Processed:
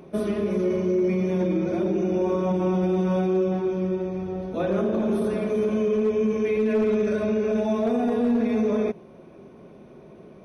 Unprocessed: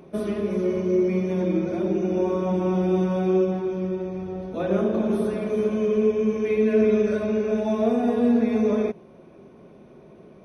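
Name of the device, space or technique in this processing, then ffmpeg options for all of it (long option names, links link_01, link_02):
clipper into limiter: -af "asoftclip=type=hard:threshold=-14dB,alimiter=limit=-18dB:level=0:latency=1:release=15,volume=1.5dB"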